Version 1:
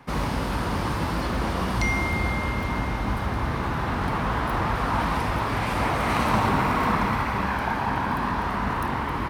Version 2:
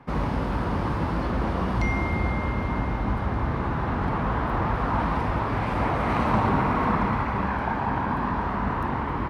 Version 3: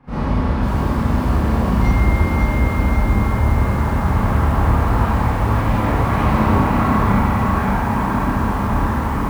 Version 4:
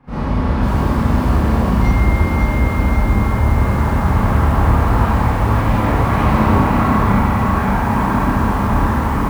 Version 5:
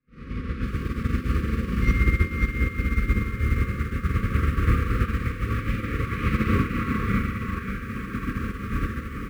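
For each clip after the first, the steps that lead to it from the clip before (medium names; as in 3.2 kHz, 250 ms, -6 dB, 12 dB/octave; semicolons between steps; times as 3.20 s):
low-pass 1.3 kHz 6 dB/octave; trim +1 dB
bass shelf 130 Hz +11 dB; Schroeder reverb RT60 0.82 s, combs from 28 ms, DRR -10 dB; bit-crushed delay 543 ms, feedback 55%, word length 5-bit, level -6 dB; trim -6.5 dB
level rider gain up to 4 dB
brick-wall FIR band-stop 540–1100 Hz; peaking EQ 2.3 kHz +7.5 dB 0.69 oct; upward expansion 2.5:1, over -26 dBFS; trim -4.5 dB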